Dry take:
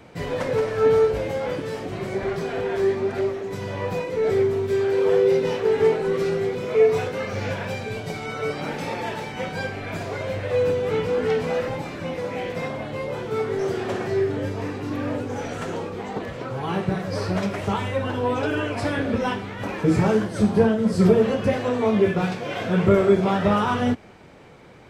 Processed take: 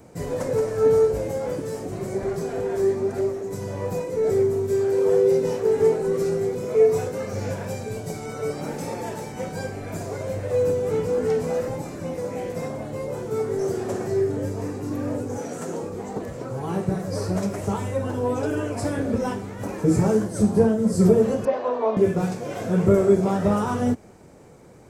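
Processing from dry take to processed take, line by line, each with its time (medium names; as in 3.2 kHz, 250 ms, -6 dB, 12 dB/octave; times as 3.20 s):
15.38–15.83 s: high-pass 140 Hz 24 dB/octave
21.45–21.97 s: cabinet simulation 430–4100 Hz, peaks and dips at 620 Hz +6 dB, 1 kHz +9 dB, 2.1 kHz -3 dB
whole clip: FFT filter 480 Hz 0 dB, 3.3 kHz -12 dB, 7.2 kHz +7 dB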